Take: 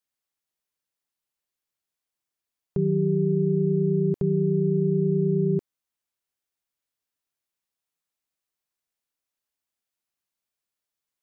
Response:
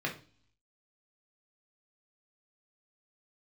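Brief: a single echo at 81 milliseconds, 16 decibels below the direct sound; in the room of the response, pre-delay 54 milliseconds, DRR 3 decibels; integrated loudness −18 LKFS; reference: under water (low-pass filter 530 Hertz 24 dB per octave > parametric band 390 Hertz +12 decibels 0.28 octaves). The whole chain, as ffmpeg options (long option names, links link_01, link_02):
-filter_complex "[0:a]aecho=1:1:81:0.158,asplit=2[link_01][link_02];[1:a]atrim=start_sample=2205,adelay=54[link_03];[link_02][link_03]afir=irnorm=-1:irlink=0,volume=-9dB[link_04];[link_01][link_04]amix=inputs=2:normalize=0,lowpass=frequency=530:width=0.5412,lowpass=frequency=530:width=1.3066,equalizer=frequency=390:width_type=o:width=0.28:gain=12,volume=-7dB"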